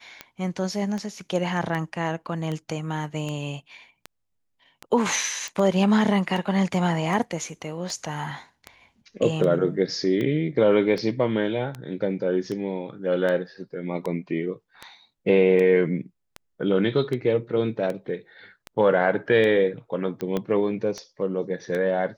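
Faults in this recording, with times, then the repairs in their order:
tick 78 rpm -18 dBFS
5.48 s: pop
20.37 s: pop -14 dBFS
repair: de-click

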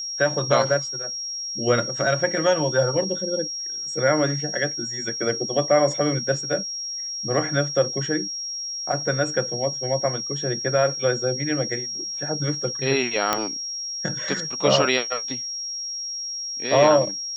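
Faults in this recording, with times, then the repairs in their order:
whine 5.6 kHz -28 dBFS
13.33 s: pop -4 dBFS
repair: de-click; band-stop 5.6 kHz, Q 30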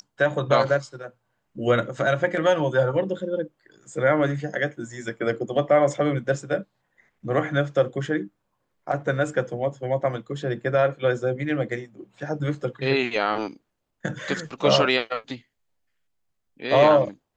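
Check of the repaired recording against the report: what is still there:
nothing left

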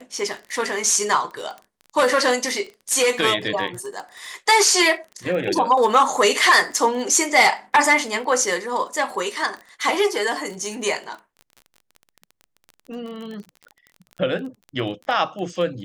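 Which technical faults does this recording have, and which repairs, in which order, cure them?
crackle 22 per s -30 dBFS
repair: de-click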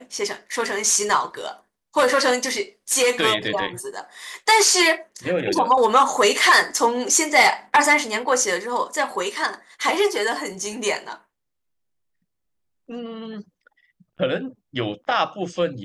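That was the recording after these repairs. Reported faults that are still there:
nothing left

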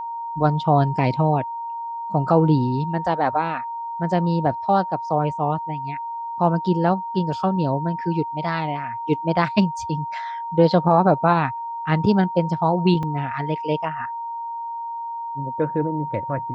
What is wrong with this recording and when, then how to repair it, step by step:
whine 930 Hz -27 dBFS
13.03 s: dropout 4.1 ms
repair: band-stop 930 Hz, Q 30; interpolate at 13.03 s, 4.1 ms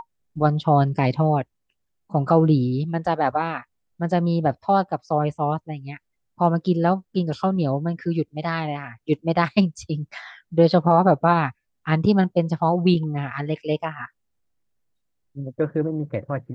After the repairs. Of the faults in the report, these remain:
nothing left

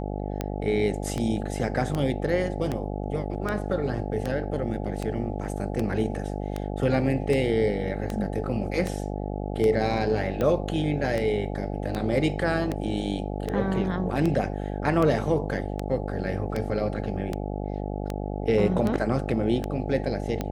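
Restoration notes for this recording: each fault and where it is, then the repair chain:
buzz 50 Hz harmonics 17 -31 dBFS
tick 78 rpm -15 dBFS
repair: de-click; de-hum 50 Hz, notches 17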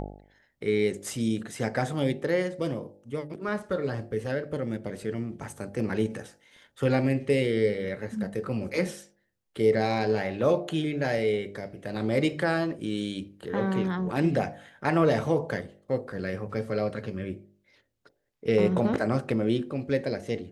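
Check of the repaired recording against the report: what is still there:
nothing left

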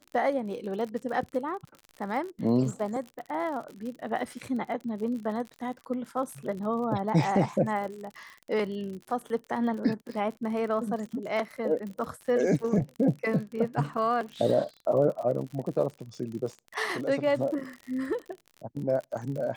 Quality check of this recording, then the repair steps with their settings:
crackle 56 per s -36 dBFS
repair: de-click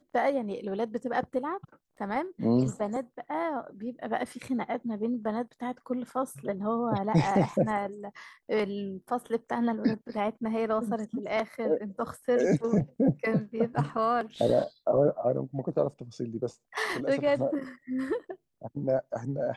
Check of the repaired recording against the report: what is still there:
nothing left

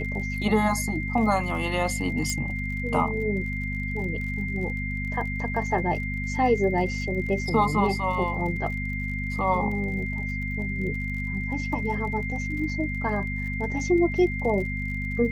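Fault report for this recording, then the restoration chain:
crackle 46 per s -36 dBFS
hum 50 Hz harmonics 5 -31 dBFS
whine 2.1 kHz -32 dBFS
2.30 s: pop -14 dBFS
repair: de-click; band-stop 2.1 kHz, Q 30; de-hum 50 Hz, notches 5

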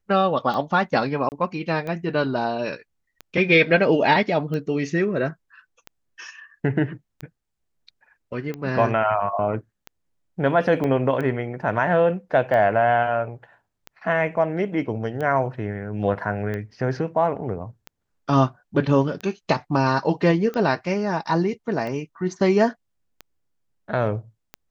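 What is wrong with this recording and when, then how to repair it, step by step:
tick 45 rpm -19 dBFS
1.29–1.32 s: dropout 29 ms
10.84 s: dropout 2.3 ms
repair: de-click; interpolate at 1.29 s, 29 ms; interpolate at 10.84 s, 2.3 ms

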